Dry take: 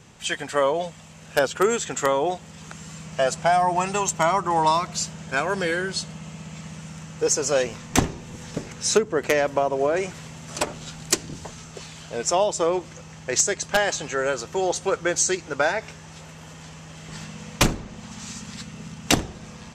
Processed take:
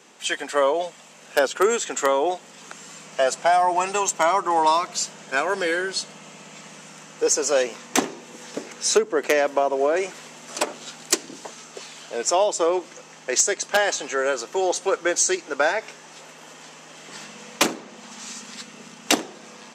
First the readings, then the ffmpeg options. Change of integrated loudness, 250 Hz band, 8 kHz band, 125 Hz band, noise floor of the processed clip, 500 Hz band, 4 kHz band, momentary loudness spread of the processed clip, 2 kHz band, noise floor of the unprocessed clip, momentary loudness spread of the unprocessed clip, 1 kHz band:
+1.0 dB, −1.5 dB, +1.0 dB, below −15 dB, −46 dBFS, +1.5 dB, +1.0 dB, 20 LU, +1.0 dB, −43 dBFS, 18 LU, +1.5 dB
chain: -af "highpass=frequency=260:width=0.5412,highpass=frequency=260:width=1.3066,aeval=exprs='0.75*(cos(1*acos(clip(val(0)/0.75,-1,1)))-cos(1*PI/2))+0.0299*(cos(5*acos(clip(val(0)/0.75,-1,1)))-cos(5*PI/2))':channel_layout=same"

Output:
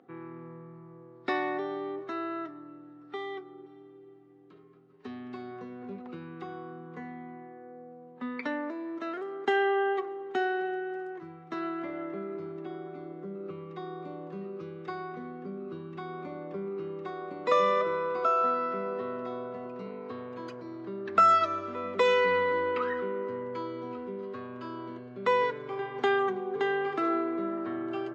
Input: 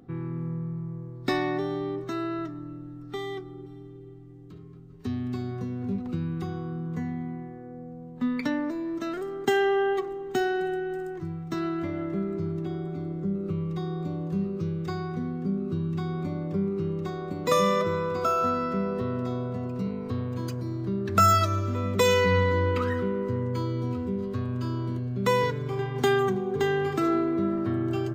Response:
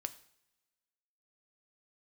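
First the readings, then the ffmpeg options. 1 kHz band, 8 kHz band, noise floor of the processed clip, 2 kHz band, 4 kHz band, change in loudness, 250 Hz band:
−0.5 dB, below −15 dB, −52 dBFS, −1.0 dB, −6.0 dB, −3.5 dB, −8.5 dB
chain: -af "highpass=430,lowpass=2700"

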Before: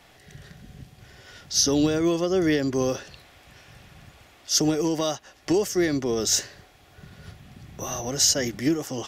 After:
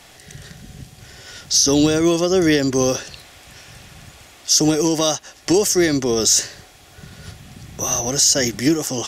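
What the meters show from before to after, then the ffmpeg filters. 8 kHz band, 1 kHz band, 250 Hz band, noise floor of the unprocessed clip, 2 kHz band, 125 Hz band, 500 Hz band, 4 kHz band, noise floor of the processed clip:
+8.0 dB, +6.5 dB, +6.0 dB, −55 dBFS, +7.0 dB, +6.0 dB, +6.0 dB, +6.5 dB, −46 dBFS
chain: -af "equalizer=frequency=8100:width=0.6:gain=9,alimiter=level_in=10dB:limit=-1dB:release=50:level=0:latency=1,volume=-4dB"

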